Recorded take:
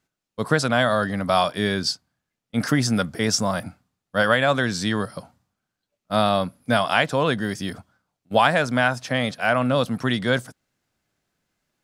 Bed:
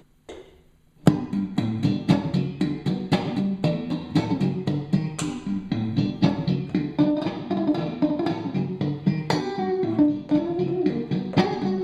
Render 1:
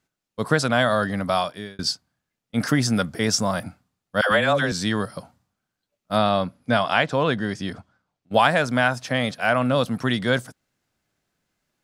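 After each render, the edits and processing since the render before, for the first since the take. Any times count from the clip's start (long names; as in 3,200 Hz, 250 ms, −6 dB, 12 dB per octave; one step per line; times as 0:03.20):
0:01.20–0:01.79: fade out
0:04.21–0:04.72: all-pass dispersion lows, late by 102 ms, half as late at 520 Hz
0:06.18–0:08.34: high-frequency loss of the air 62 metres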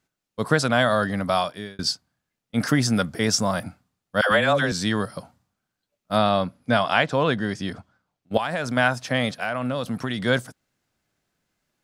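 0:08.37–0:08.77: downward compressor, threshold −22 dBFS
0:09.42–0:10.19: downward compressor 5 to 1, threshold −22 dBFS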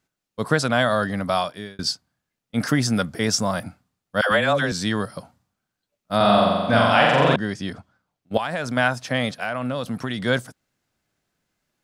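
0:06.16–0:07.36: flutter between parallel walls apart 7.5 metres, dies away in 1.5 s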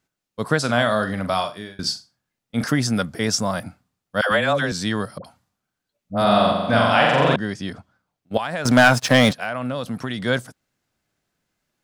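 0:00.59–0:02.64: flutter between parallel walls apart 7.2 metres, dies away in 0.26 s
0:05.18–0:06.52: all-pass dispersion highs, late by 64 ms, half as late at 740 Hz
0:08.65–0:09.33: leveller curve on the samples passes 3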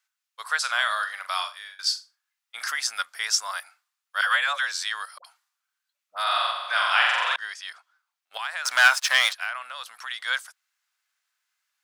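high-pass filter 1,100 Hz 24 dB per octave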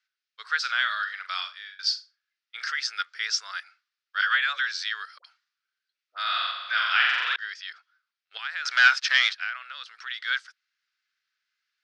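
Chebyshev band-pass filter 390–5,100 Hz, order 3
flat-topped bell 750 Hz −13.5 dB 1.3 octaves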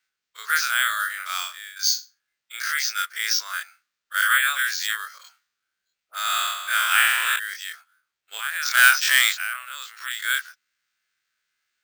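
every bin's largest magnitude spread in time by 60 ms
decimation without filtering 4×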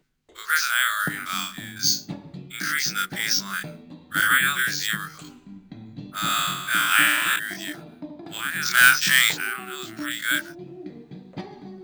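mix in bed −15.5 dB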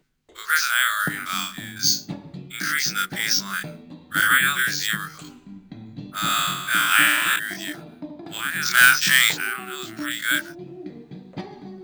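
level +1.5 dB
brickwall limiter −3 dBFS, peak gain reduction 2 dB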